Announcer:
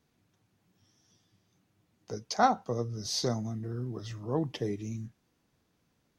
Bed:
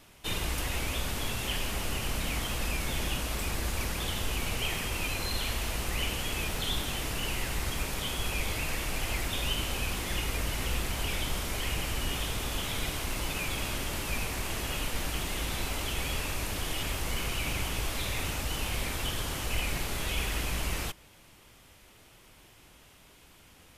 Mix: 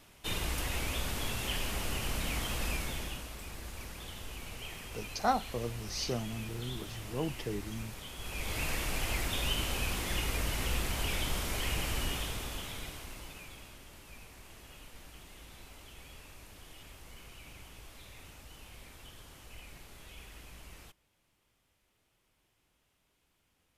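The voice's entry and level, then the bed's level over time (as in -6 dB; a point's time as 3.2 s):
2.85 s, -4.5 dB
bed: 2.73 s -2.5 dB
3.34 s -12 dB
8.14 s -12 dB
8.62 s -1.5 dB
12 s -1.5 dB
13.78 s -19 dB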